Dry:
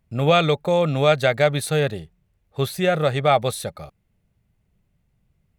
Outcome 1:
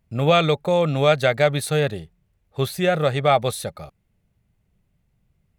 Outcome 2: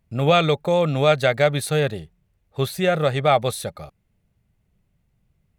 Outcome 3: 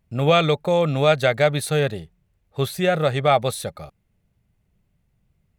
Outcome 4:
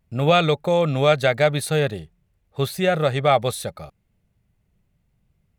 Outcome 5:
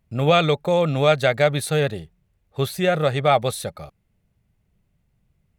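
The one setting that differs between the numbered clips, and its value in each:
pitch vibrato, speed: 4.5, 6.8, 2.1, 0.81, 13 Hertz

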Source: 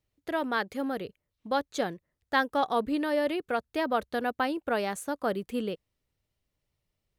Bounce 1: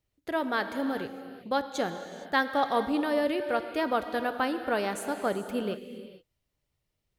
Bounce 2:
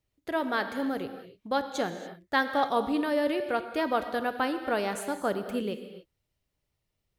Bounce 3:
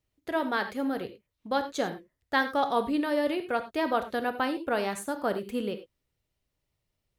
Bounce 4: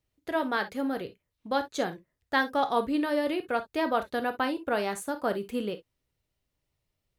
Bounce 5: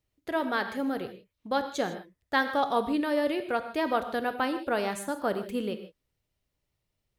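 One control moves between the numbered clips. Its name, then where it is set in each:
reverb whose tail is shaped and stops, gate: 490, 310, 120, 80, 180 milliseconds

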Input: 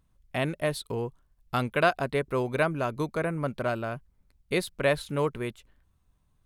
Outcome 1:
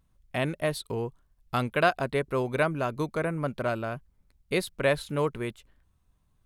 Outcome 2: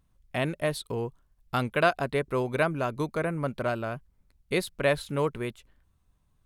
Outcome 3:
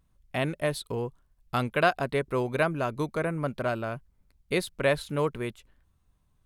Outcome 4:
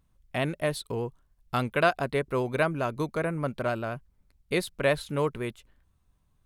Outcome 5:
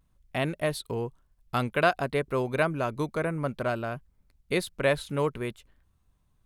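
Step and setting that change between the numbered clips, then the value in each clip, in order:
pitch vibrato, speed: 1.8, 4.6, 1.2, 10, 0.56 Hertz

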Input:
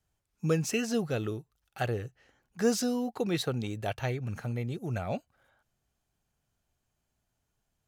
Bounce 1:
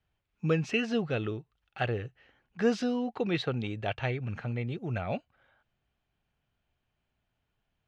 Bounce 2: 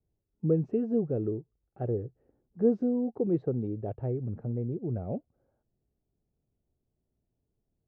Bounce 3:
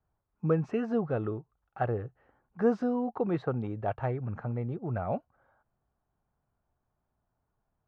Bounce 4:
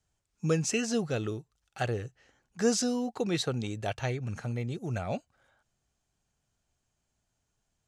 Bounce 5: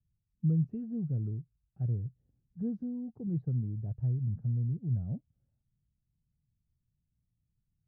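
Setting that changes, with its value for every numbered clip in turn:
low-pass with resonance, frequency: 2,900, 410, 1,100, 7,600, 150 Hertz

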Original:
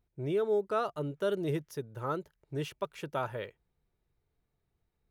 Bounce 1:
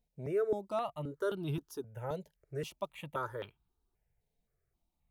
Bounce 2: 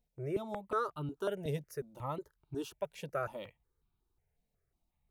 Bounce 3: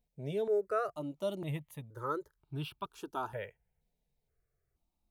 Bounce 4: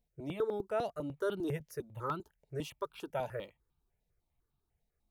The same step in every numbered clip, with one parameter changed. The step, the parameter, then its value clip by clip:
step-sequenced phaser, speed: 3.8, 5.5, 2.1, 10 Hertz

